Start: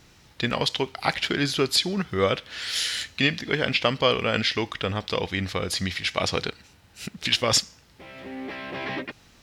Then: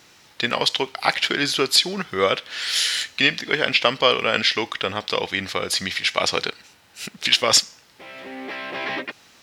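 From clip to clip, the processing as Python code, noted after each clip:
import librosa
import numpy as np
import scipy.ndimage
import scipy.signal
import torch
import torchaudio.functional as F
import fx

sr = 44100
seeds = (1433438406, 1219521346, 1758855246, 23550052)

y = fx.highpass(x, sr, hz=500.0, slope=6)
y = y * 10.0 ** (5.5 / 20.0)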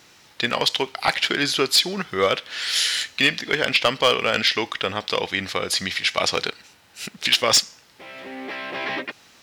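y = np.clip(x, -10.0 ** (-9.0 / 20.0), 10.0 ** (-9.0 / 20.0))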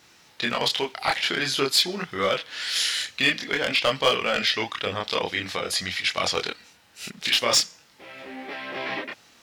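y = fx.chorus_voices(x, sr, voices=2, hz=0.49, base_ms=26, depth_ms=4.6, mix_pct=45)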